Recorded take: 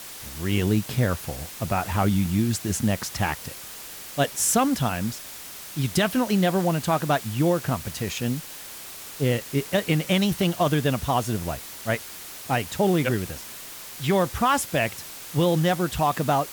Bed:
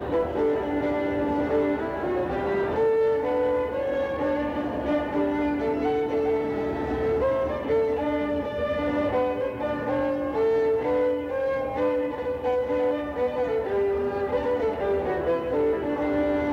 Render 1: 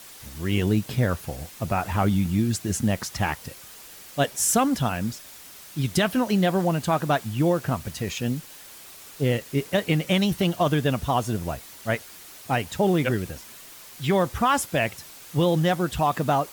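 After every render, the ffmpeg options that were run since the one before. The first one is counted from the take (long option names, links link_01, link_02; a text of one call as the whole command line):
ffmpeg -i in.wav -af "afftdn=noise_reduction=6:noise_floor=-40" out.wav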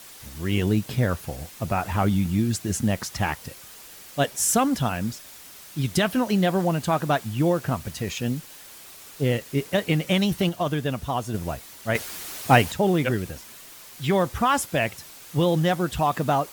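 ffmpeg -i in.wav -filter_complex "[0:a]asplit=5[link_01][link_02][link_03][link_04][link_05];[link_01]atrim=end=10.492[link_06];[link_02]atrim=start=10.488:end=11.342,asetpts=PTS-STARTPTS,volume=-3.5dB[link_07];[link_03]atrim=start=11.338:end=11.952[link_08];[link_04]atrim=start=11.948:end=12.722,asetpts=PTS-STARTPTS,volume=8.5dB[link_09];[link_05]atrim=start=12.718[link_10];[link_06][link_07]acrossfade=duration=0.004:curve1=hsin:curve2=hsin[link_11];[link_11][link_08]acrossfade=duration=0.004:curve1=hsin:curve2=hsin[link_12];[link_12][link_09]acrossfade=duration=0.004:curve1=hsin:curve2=hsin[link_13];[link_13][link_10]acrossfade=duration=0.004:curve1=hsin:curve2=hsin" out.wav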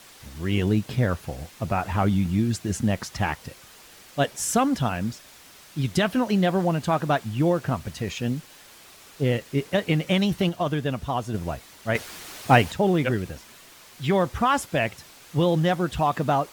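ffmpeg -i in.wav -af "highshelf=frequency=7900:gain=-10" out.wav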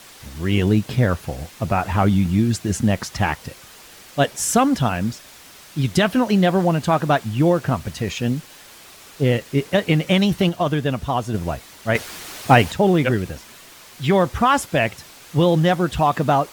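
ffmpeg -i in.wav -af "volume=5dB,alimiter=limit=-1dB:level=0:latency=1" out.wav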